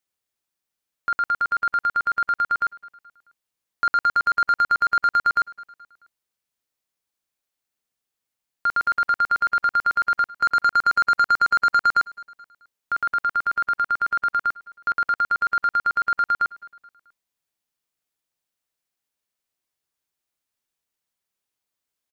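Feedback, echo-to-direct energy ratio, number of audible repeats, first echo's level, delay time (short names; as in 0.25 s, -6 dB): 49%, -22.0 dB, 2, -23.0 dB, 0.215 s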